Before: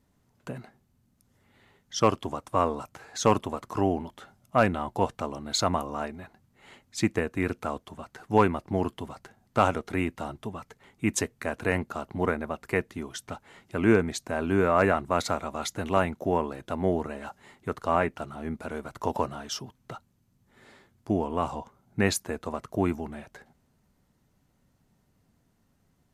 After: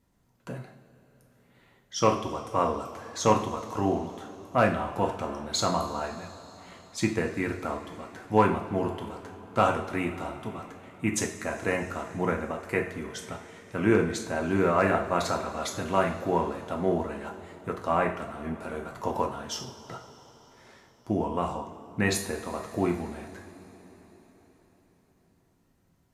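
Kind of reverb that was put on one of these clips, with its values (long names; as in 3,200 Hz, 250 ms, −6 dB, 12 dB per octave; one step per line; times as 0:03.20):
coupled-rooms reverb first 0.48 s, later 4.7 s, from −18 dB, DRR 1 dB
level −2.5 dB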